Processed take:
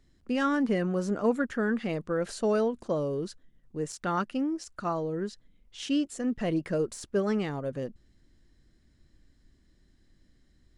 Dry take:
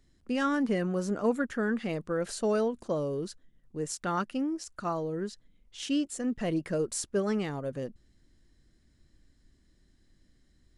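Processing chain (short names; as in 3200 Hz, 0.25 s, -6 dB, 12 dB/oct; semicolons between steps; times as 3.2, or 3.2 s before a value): de-esser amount 70%; high shelf 8400 Hz -8 dB; gain +1.5 dB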